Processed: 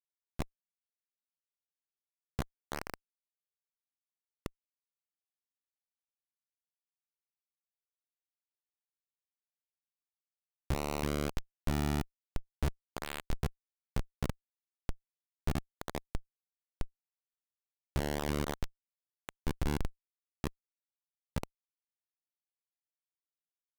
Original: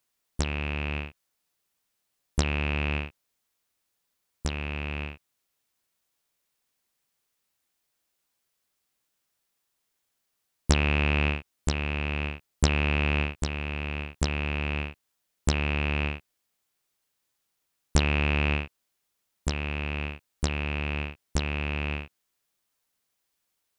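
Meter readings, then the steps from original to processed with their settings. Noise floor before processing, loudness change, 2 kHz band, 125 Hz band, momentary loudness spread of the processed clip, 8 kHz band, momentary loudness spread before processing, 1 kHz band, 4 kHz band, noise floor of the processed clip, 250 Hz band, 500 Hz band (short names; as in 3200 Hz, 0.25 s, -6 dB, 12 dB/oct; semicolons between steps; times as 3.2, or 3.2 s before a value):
-79 dBFS, -10.5 dB, -17.0 dB, -11.0 dB, 14 LU, -11.0 dB, 11 LU, -7.5 dB, -13.5 dB, under -85 dBFS, -7.5 dB, -7.0 dB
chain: echo with dull and thin repeats by turns 0.331 s, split 960 Hz, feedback 85%, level -8 dB; Schmitt trigger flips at -21 dBFS; gain +2.5 dB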